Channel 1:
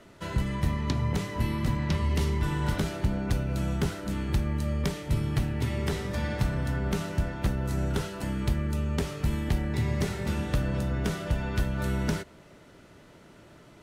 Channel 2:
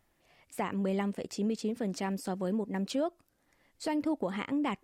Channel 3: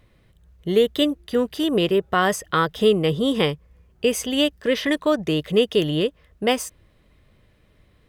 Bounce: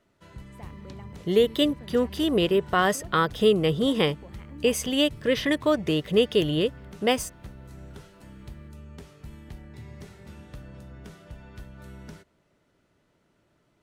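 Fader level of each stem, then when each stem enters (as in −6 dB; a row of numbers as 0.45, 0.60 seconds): −15.5, −15.0, −2.5 decibels; 0.00, 0.00, 0.60 seconds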